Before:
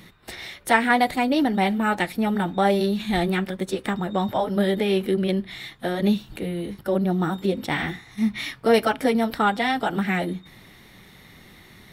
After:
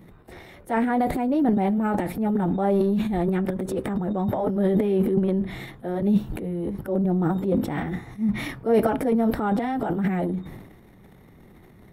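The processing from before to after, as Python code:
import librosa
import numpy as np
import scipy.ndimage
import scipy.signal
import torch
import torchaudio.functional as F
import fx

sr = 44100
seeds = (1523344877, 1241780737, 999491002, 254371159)

y = fx.curve_eq(x, sr, hz=(430.0, 830.0, 4200.0, 12000.0), db=(0, -4, -21, -11))
y = fx.transient(y, sr, attack_db=-5, sustain_db=12)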